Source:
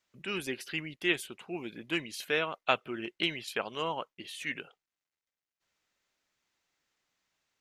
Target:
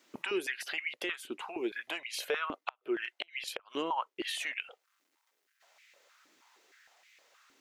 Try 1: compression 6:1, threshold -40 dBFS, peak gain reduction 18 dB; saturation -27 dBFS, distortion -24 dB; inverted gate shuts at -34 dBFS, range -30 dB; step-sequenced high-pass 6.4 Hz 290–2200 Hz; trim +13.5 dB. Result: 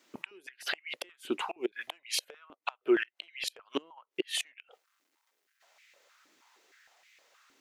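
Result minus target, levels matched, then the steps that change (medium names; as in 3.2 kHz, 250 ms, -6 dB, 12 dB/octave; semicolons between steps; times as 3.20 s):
compression: peak gain reduction -8.5 dB
change: compression 6:1, threshold -50 dBFS, peak gain reduction 26 dB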